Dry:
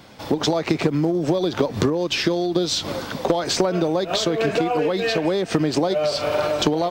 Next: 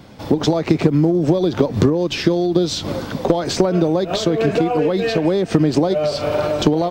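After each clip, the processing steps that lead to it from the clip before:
low-shelf EQ 480 Hz +9.5 dB
level −1.5 dB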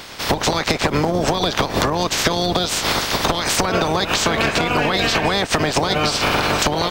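ceiling on every frequency bin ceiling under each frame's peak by 26 dB
downward compressor 10 to 1, threshold −20 dBFS, peak gain reduction 12 dB
gain into a clipping stage and back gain 15 dB
level +6 dB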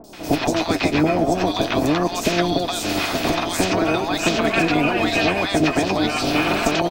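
hollow resonant body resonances 300/670/2,500 Hz, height 11 dB, ringing for 35 ms
flanger 0.45 Hz, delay 4.3 ms, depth 8.9 ms, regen +40%
three-band delay without the direct sound lows, highs, mids 40/130 ms, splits 790/5,400 Hz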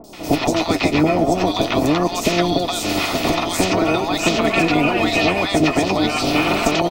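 Butterworth band-reject 1,600 Hz, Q 7.1
level +2 dB

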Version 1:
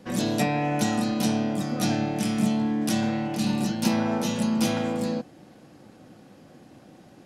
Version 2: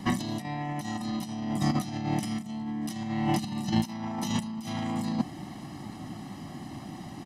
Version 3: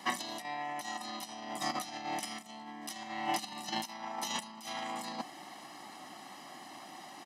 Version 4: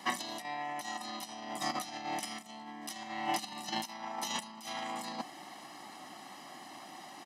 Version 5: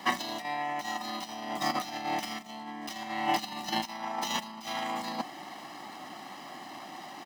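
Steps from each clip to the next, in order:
compressor whose output falls as the input rises −31 dBFS, ratio −0.5; comb filter 1 ms, depth 86%
high-pass filter 620 Hz 12 dB per octave
no processing that can be heard
running median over 5 samples; level +5.5 dB

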